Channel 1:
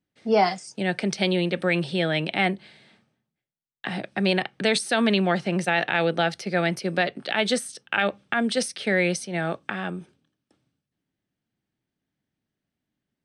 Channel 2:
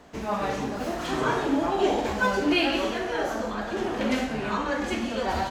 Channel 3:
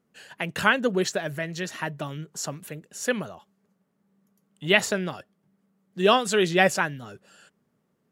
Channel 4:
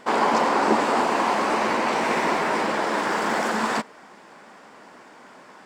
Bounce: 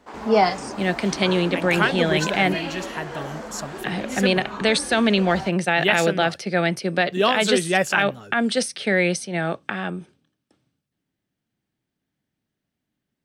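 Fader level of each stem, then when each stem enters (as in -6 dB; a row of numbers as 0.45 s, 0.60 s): +2.5 dB, -6.5 dB, -0.5 dB, -17.0 dB; 0.00 s, 0.00 s, 1.15 s, 0.00 s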